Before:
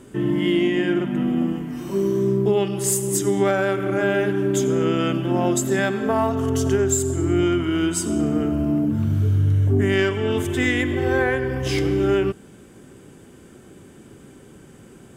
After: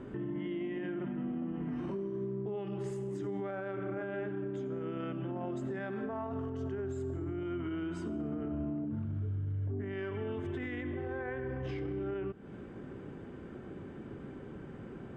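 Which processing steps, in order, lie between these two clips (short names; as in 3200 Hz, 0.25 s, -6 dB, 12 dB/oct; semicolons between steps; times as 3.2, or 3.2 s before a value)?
compressor 5:1, threshold -31 dBFS, peak gain reduction 14.5 dB; LPF 1900 Hz 12 dB/oct; limiter -30 dBFS, peak gain reduction 8 dB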